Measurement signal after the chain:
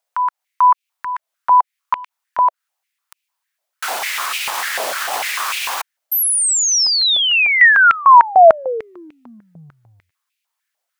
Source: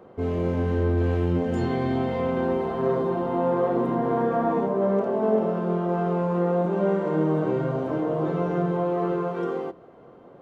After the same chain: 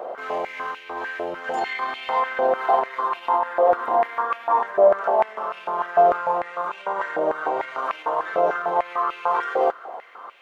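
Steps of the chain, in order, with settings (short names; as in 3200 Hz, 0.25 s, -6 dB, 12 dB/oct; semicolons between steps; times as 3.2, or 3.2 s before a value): compressor, threshold -26 dBFS; maximiser +24.5 dB; stepped high-pass 6.7 Hz 640–2500 Hz; gain -12 dB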